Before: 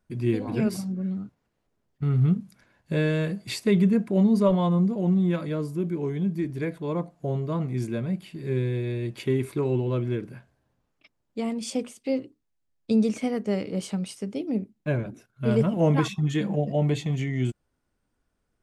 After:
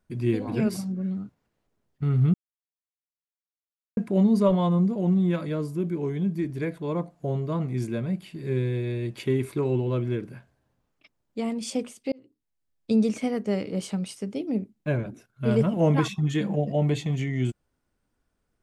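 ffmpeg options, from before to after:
-filter_complex "[0:a]asplit=4[a][b][c][d];[a]atrim=end=2.34,asetpts=PTS-STARTPTS,afade=t=out:st=2.336:d=0.004:c=hsin[e];[b]atrim=start=2.34:end=3.97,asetpts=PTS-STARTPTS,volume=0[f];[c]atrim=start=3.97:end=12.12,asetpts=PTS-STARTPTS,afade=t=in:d=0.004:c=hsin,afade=t=out:st=8.146:d=0.004:c=hsin[g];[d]atrim=start=12.12,asetpts=PTS-STARTPTS,afade=t=in:d=0.92:c=qsin[h];[e][f][g][h]concat=n=4:v=0:a=1"

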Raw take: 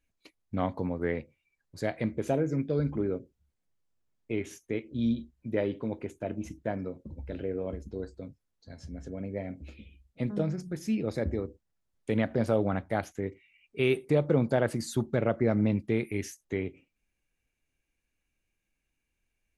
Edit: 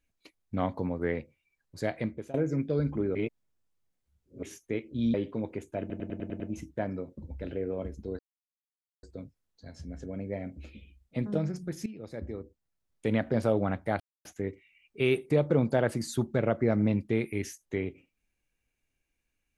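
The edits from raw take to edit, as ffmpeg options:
-filter_complex "[0:a]asplit=14[a][b][c][d][e][f][g][h][i][j][k][l][m][n];[a]atrim=end=2.34,asetpts=PTS-STARTPTS,afade=t=out:st=1.97:d=0.37:silence=0.0794328[o];[b]atrim=start=2.34:end=3.152,asetpts=PTS-STARTPTS,afade=t=in:d=0.004:c=hsin:silence=0.0794328[p];[c]atrim=start=3.148:end=4.432,asetpts=PTS-STARTPTS,areverse[q];[d]atrim=start=4.428:end=5.142[r];[e]atrim=start=5.618:end=6.382[s];[f]atrim=start=6.278:end=6.382[t];[g]atrim=start=6.278:end=6.382[u];[h]atrim=start=6.278:end=6.382[v];[i]atrim=start=6.278:end=6.382[w];[j]atrim=start=6.278:end=6.382[x];[k]atrim=start=6.278:end=8.07,asetpts=PTS-STARTPTS,afade=t=out:st=1.788:d=0.004:c=hsin,apad=pad_dur=0.84[y];[l]atrim=start=8.07:end=10.9,asetpts=PTS-STARTPTS,afade=t=in:d=0.004:c=hsin,afade=t=out:st=2.826:d=0.004:c=hsin:silence=0.158489[z];[m]atrim=start=10.9:end=13.04,asetpts=PTS-STARTPTS,afade=t=in:d=1.24:silence=0.158489,afade=t=out:st=2.136:d=0.004:c=hsin,apad=pad_dur=0.25[aa];[n]atrim=start=13.04,asetpts=PTS-STARTPTS,afade=t=in:d=0.004:c=hsin[ab];[o][p]concat=n=2:v=0:a=1[ac];[ac][q]acrossfade=d=0.004:c1=hsin:c2=hsin[ad];[ad][r]acrossfade=d=0.004:c1=hsin:c2=hsin[ae];[ae][s]acrossfade=d=0.004:c1=hsin:c2=hsin[af];[af][t]acrossfade=d=0.004:c1=hsin:c2=hsin[ag];[ag][u]acrossfade=d=0.004:c1=hsin:c2=hsin[ah];[ah][v]acrossfade=d=0.004:c1=hsin:c2=hsin[ai];[ai][w]acrossfade=d=0.004:c1=hsin:c2=hsin[aj];[aj][x]acrossfade=d=0.004:c1=hsin:c2=hsin[ak];[y][z][aa][ab]concat=n=4:v=0:a=1[al];[ak][al]acrossfade=d=0.004:c1=hsin:c2=hsin"

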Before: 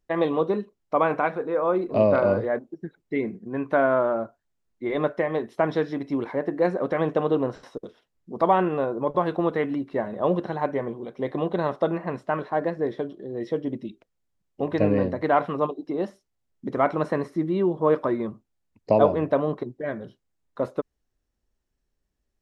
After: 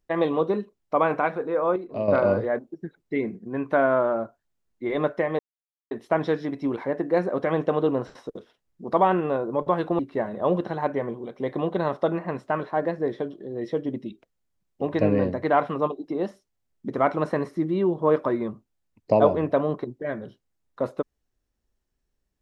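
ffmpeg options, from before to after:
-filter_complex "[0:a]asplit=5[a][b][c][d][e];[a]atrim=end=1.762[f];[b]atrim=start=1.758:end=2.082,asetpts=PTS-STARTPTS,volume=-8.5dB[g];[c]atrim=start=2.078:end=5.39,asetpts=PTS-STARTPTS,afade=t=out:st=3.308:d=0.004:c=hsin,apad=pad_dur=0.52[h];[d]atrim=start=5.39:end=9.472,asetpts=PTS-STARTPTS,afade=t=in:d=0.004:c=hsin[i];[e]atrim=start=9.778[j];[f][g]acrossfade=d=0.004:c1=hsin:c2=hsin[k];[h][i]concat=n=2:v=0:a=1[l];[k][l]acrossfade=d=0.004:c1=hsin:c2=hsin[m];[m][j]acrossfade=d=0.004:c1=hsin:c2=hsin"

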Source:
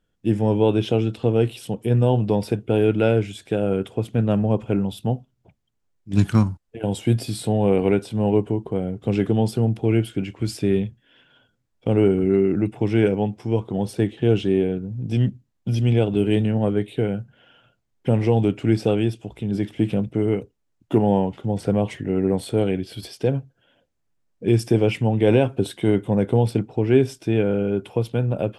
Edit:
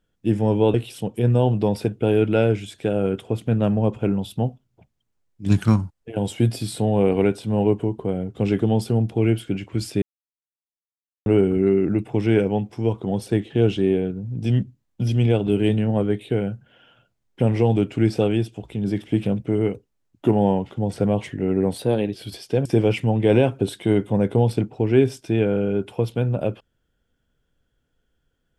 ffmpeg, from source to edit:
-filter_complex "[0:a]asplit=7[a][b][c][d][e][f][g];[a]atrim=end=0.742[h];[b]atrim=start=1.408:end=10.69,asetpts=PTS-STARTPTS,afade=t=out:st=9.278:d=0.004:c=hsin[i];[c]atrim=start=10.69:end=11.93,asetpts=PTS-STARTPTS,volume=0[j];[d]atrim=start=11.93:end=22.454,asetpts=PTS-STARTPTS,afade=t=in:d=0.004:c=hsin[k];[e]atrim=start=22.45:end=22.85,asetpts=PTS-STARTPTS,asetrate=48510,aresample=44100,atrim=end_sample=16036,asetpts=PTS-STARTPTS[l];[f]atrim=start=22.846:end=23.362[m];[g]atrim=start=24.628[n];[i][j][k]concat=n=3:v=0:a=1[o];[h][o]acrossfade=d=0.004:c1=hsin:c2=hsin[p];[p][l]acrossfade=d=0.004:c1=hsin:c2=hsin[q];[q][m]acrossfade=d=0.004:c1=hsin:c2=hsin[r];[r][n]acrossfade=d=0.004:c1=hsin:c2=hsin"

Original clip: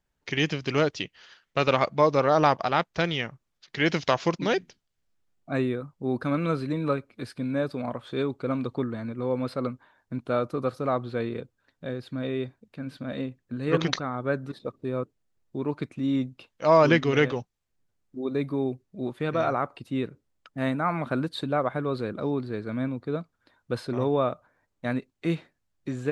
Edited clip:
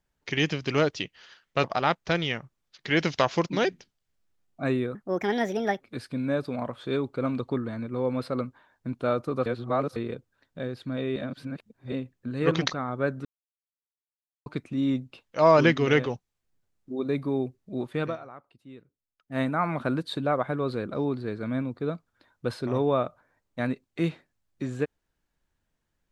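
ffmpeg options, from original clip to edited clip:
-filter_complex "[0:a]asplit=12[a][b][c][d][e][f][g][h][i][j][k][l];[a]atrim=end=1.642[m];[b]atrim=start=2.528:end=5.844[n];[c]atrim=start=5.84:end=7.07,asetpts=PTS-STARTPTS,asetrate=63063,aresample=44100,atrim=end_sample=37932,asetpts=PTS-STARTPTS[o];[d]atrim=start=7.066:end=10.722[p];[e]atrim=start=10.718:end=11.222,asetpts=PTS-STARTPTS,areverse[q];[f]atrim=start=11.218:end=12.422[r];[g]atrim=start=12.418:end=13.182,asetpts=PTS-STARTPTS,areverse[s];[h]atrim=start=13.178:end=14.51,asetpts=PTS-STARTPTS,afade=t=out:st=1.328:d=0.004:c=hsin[t];[i]atrim=start=14.51:end=15.72,asetpts=PTS-STARTPTS,volume=0[u];[j]atrim=start=15.72:end=19.43,asetpts=PTS-STARTPTS,afade=t=in:d=0.004:c=hsin,afade=t=out:st=3.59:d=0.12:silence=0.125893[v];[k]atrim=start=19.43:end=20.53,asetpts=PTS-STARTPTS,volume=-18dB[w];[l]atrim=start=20.53,asetpts=PTS-STARTPTS,afade=t=in:d=0.12:silence=0.125893[x];[m][n]acrossfade=d=0.004:c1=hsin:c2=hsin[y];[y][o]acrossfade=d=0.004:c1=hsin:c2=hsin[z];[z][p]acrossfade=d=0.004:c1=hsin:c2=hsin[aa];[aa][q]acrossfade=d=0.004:c1=hsin:c2=hsin[ab];[ab][r]acrossfade=d=0.004:c1=hsin:c2=hsin[ac];[ac][s]acrossfade=d=0.004:c1=hsin:c2=hsin[ad];[t][u][v][w][x]concat=n=5:v=0:a=1[ae];[ad][ae]acrossfade=d=0.004:c1=hsin:c2=hsin"

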